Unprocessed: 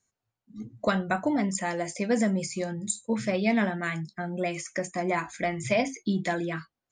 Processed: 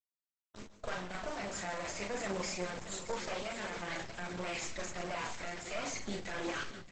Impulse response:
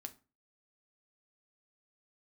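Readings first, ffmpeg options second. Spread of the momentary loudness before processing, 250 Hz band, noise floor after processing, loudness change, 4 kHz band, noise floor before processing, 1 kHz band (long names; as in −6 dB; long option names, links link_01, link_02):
8 LU, −16.5 dB, below −85 dBFS, −11.0 dB, −2.5 dB, below −85 dBFS, −9.0 dB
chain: -filter_complex "[0:a]highpass=580,highshelf=frequency=5300:gain=-6.5,areverse,acompressor=threshold=-42dB:ratio=5,areverse,alimiter=level_in=15.5dB:limit=-24dB:level=0:latency=1:release=16,volume=-15.5dB,dynaudnorm=framelen=210:gausssize=3:maxgain=3dB,acrusher=bits=6:dc=4:mix=0:aa=0.000001,flanger=delay=4.6:depth=6.4:regen=40:speed=0.82:shape=sinusoidal,asplit=2[link_01][link_02];[link_02]adelay=39,volume=-4dB[link_03];[link_01][link_03]amix=inputs=2:normalize=0,aecho=1:1:628|1256|1884|2512:0.282|0.116|0.0474|0.0194,asplit=2[link_04][link_05];[1:a]atrim=start_sample=2205,asetrate=31752,aresample=44100,adelay=138[link_06];[link_05][link_06]afir=irnorm=-1:irlink=0,volume=-10.5dB[link_07];[link_04][link_07]amix=inputs=2:normalize=0,volume=14dB" -ar 48000 -c:a libopus -b:a 12k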